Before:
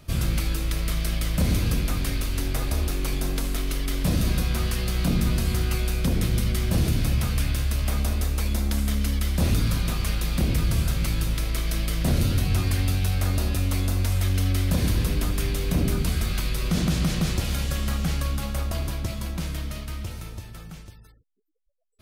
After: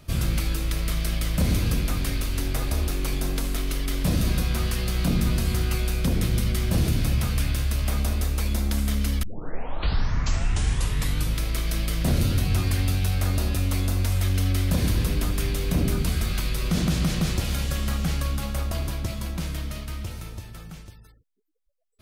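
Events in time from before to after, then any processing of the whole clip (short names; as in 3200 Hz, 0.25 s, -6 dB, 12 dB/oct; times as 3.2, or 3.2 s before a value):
9.23 tape start 2.13 s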